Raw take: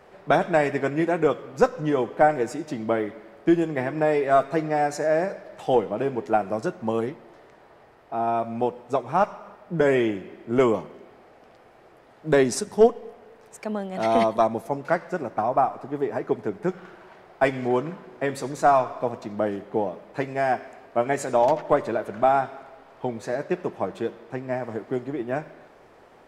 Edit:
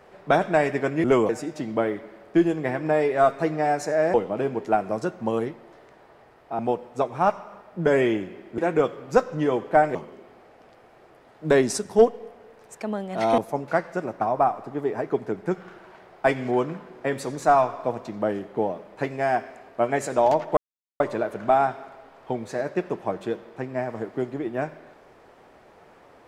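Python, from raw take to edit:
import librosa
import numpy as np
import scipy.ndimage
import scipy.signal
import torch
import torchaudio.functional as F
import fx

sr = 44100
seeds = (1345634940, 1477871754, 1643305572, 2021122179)

y = fx.edit(x, sr, fx.swap(start_s=1.04, length_s=1.37, other_s=10.52, other_length_s=0.25),
    fx.cut(start_s=5.26, length_s=0.49),
    fx.cut(start_s=8.2, length_s=0.33),
    fx.cut(start_s=14.2, length_s=0.35),
    fx.insert_silence(at_s=21.74, length_s=0.43), tone=tone)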